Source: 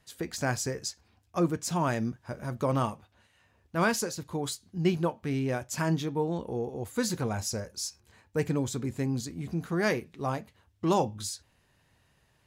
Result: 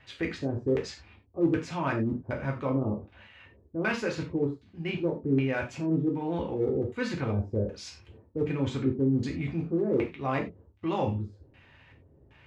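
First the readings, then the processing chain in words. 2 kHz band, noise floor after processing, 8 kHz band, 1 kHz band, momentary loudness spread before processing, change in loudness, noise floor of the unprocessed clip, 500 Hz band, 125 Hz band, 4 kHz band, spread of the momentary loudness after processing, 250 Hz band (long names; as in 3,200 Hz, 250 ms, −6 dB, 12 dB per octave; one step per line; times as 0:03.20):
−0.5 dB, −59 dBFS, −16.0 dB, −3.5 dB, 9 LU, +1.0 dB, −68 dBFS, +1.5 dB, +1.0 dB, −5.5 dB, 10 LU, +2.5 dB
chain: one scale factor per block 7 bits
reversed playback
downward compressor 6 to 1, threshold −36 dBFS, peak gain reduction 15.5 dB
reversed playback
surface crackle 110 per second −63 dBFS
auto-filter low-pass square 1.3 Hz 400–2,500 Hz
in parallel at −5.5 dB: gain into a clipping stage and back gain 29.5 dB
on the sum: reverb whose tail is shaped and stops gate 120 ms falling, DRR 0.5 dB
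level +2.5 dB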